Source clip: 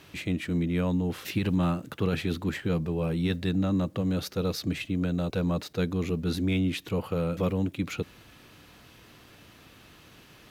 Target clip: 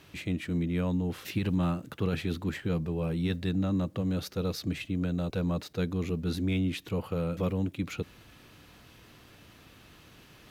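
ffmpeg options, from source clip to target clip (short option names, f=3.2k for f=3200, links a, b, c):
-af "lowshelf=f=130:g=3.5,areverse,acompressor=mode=upward:threshold=-46dB:ratio=2.5,areverse,volume=-3.5dB"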